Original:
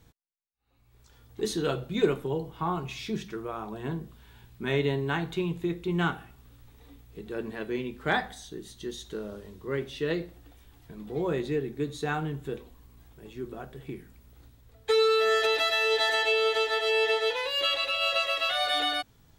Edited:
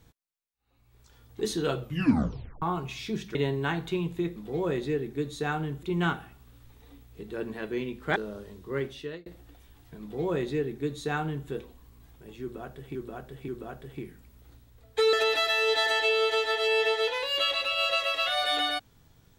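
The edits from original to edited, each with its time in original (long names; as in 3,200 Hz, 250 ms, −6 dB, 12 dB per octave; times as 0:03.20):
0:01.80: tape stop 0.82 s
0:03.35–0:04.80: remove
0:08.14–0:09.13: remove
0:09.81–0:10.23: fade out
0:10.98–0:12.45: duplicate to 0:05.81
0:13.39–0:13.92: repeat, 3 plays
0:15.04–0:15.36: remove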